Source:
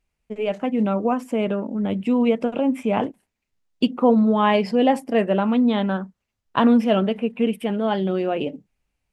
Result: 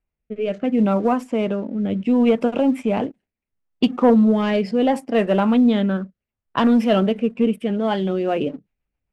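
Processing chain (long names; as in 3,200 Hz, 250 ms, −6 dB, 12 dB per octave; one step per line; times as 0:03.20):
leveller curve on the samples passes 1
rotating-speaker cabinet horn 0.7 Hz, later 7.5 Hz, at 0:07.81
low-pass that shuts in the quiet parts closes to 2,000 Hz, open at −15.5 dBFS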